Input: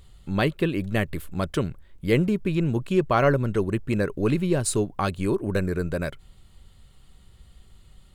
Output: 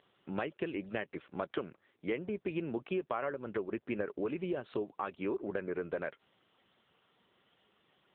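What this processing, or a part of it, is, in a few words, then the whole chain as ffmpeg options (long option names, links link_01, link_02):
voicemail: -filter_complex "[0:a]asplit=3[link_01][link_02][link_03];[link_01]afade=type=out:start_time=3.31:duration=0.02[link_04];[link_02]equalizer=frequency=80:width=2.4:gain=3.5,afade=type=in:start_time=3.31:duration=0.02,afade=type=out:start_time=3.77:duration=0.02[link_05];[link_03]afade=type=in:start_time=3.77:duration=0.02[link_06];[link_04][link_05][link_06]amix=inputs=3:normalize=0,highpass=370,lowpass=3200,acompressor=threshold=-31dB:ratio=8" -ar 8000 -c:a libopencore_amrnb -b:a 6700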